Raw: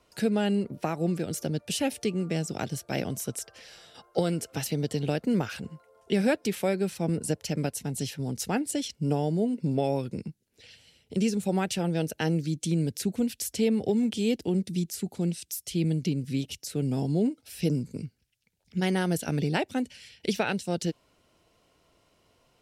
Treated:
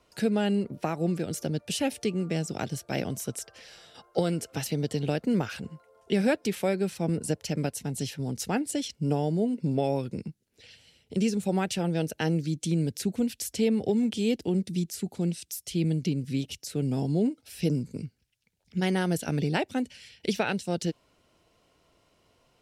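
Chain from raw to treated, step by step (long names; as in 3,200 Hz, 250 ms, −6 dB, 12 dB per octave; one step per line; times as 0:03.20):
high-shelf EQ 11,000 Hz −4 dB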